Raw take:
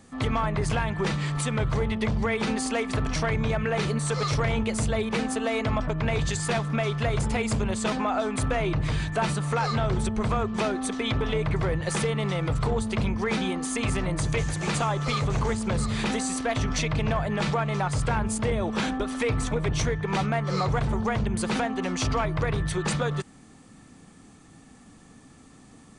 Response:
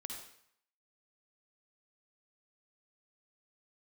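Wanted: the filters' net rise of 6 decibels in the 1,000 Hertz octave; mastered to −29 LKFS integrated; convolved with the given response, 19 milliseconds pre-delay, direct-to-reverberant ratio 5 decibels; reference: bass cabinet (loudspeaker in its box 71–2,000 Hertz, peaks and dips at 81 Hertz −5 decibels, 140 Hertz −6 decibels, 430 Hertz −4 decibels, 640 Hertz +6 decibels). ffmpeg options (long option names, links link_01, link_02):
-filter_complex "[0:a]equalizer=frequency=1000:width_type=o:gain=6.5,asplit=2[link_01][link_02];[1:a]atrim=start_sample=2205,adelay=19[link_03];[link_02][link_03]afir=irnorm=-1:irlink=0,volume=-2.5dB[link_04];[link_01][link_04]amix=inputs=2:normalize=0,highpass=frequency=71:width=0.5412,highpass=frequency=71:width=1.3066,equalizer=frequency=81:width_type=q:width=4:gain=-5,equalizer=frequency=140:width_type=q:width=4:gain=-6,equalizer=frequency=430:width_type=q:width=4:gain=-4,equalizer=frequency=640:width_type=q:width=4:gain=6,lowpass=frequency=2000:width=0.5412,lowpass=frequency=2000:width=1.3066,volume=-4.5dB"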